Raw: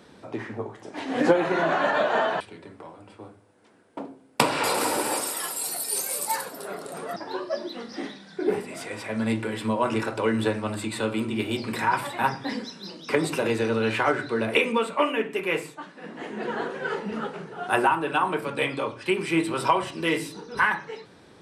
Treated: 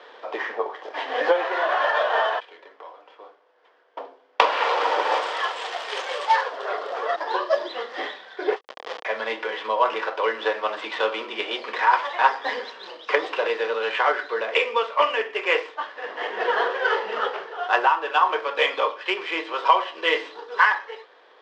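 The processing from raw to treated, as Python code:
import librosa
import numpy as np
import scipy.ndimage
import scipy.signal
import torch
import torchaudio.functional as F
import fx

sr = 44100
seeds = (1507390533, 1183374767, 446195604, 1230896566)

y = scipy.ndimage.median_filter(x, 9, mode='constant')
y = fx.notch(y, sr, hz=820.0, q=17.0)
y = fx.rider(y, sr, range_db=4, speed_s=0.5)
y = fx.schmitt(y, sr, flips_db=-29.0, at=(8.56, 9.05))
y = fx.cabinet(y, sr, low_hz=470.0, low_slope=24, high_hz=5300.0, hz=(480.0, 800.0, 1100.0, 1800.0, 3200.0, 5000.0), db=(5, 5, 6, 6, 9, 4))
y = fx.end_taper(y, sr, db_per_s=490.0)
y = F.gain(torch.from_numpy(y), 2.0).numpy()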